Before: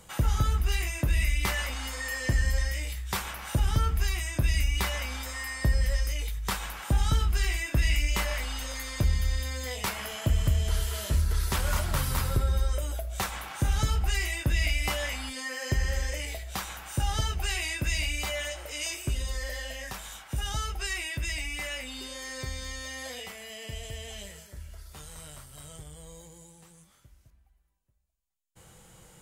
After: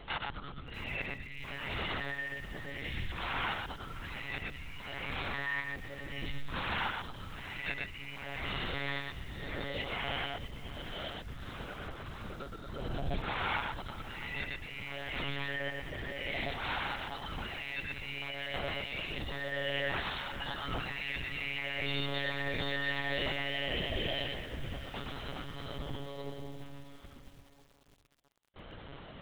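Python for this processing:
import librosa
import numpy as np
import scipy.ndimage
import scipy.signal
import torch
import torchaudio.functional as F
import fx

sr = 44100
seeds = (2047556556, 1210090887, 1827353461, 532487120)

y = scipy.signal.sosfilt(scipy.signal.butter(2, 70.0, 'highpass', fs=sr, output='sos'), x)
y = fx.over_compress(y, sr, threshold_db=-40.0, ratio=-1.0)
y = fx.echo_multitap(y, sr, ms=(113, 119), db=(-12.0, -4.5))
y = fx.lpc_monotone(y, sr, seeds[0], pitch_hz=140.0, order=10)
y = fx.echo_crushed(y, sr, ms=661, feedback_pct=55, bits=8, wet_db=-14.5)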